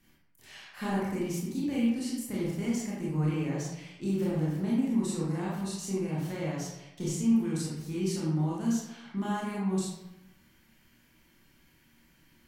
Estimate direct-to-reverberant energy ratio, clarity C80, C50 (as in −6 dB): −6.5 dB, 3.5 dB, −1.0 dB